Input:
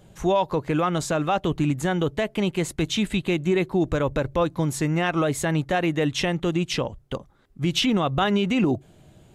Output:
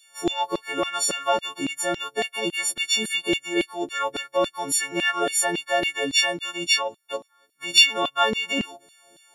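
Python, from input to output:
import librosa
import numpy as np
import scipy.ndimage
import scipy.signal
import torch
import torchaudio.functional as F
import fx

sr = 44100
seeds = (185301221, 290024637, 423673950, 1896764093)

y = fx.freq_snap(x, sr, grid_st=4)
y = fx.filter_lfo_highpass(y, sr, shape='saw_down', hz=3.6, low_hz=270.0, high_hz=3700.0, q=1.9)
y = y * 10.0 ** (-3.0 / 20.0)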